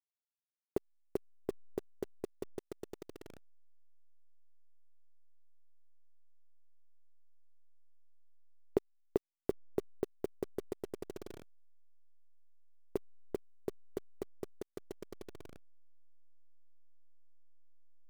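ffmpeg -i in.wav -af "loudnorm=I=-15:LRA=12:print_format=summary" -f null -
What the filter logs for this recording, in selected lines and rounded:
Input Integrated:    -44.1 LUFS
Input True Peak:     -14.3 dBTP
Input LRA:            19.1 LU
Input Threshold:     -54.7 LUFS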